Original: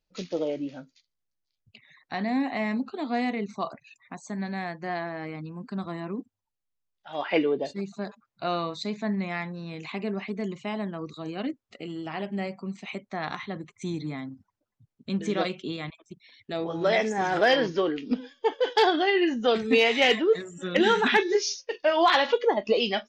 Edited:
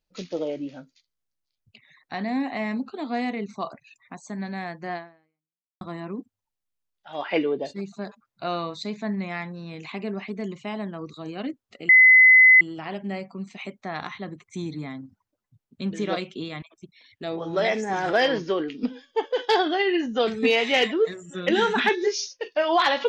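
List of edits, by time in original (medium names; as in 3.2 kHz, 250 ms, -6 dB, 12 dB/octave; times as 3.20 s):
4.95–5.81 s: fade out exponential
11.89 s: add tone 2.03 kHz -9.5 dBFS 0.72 s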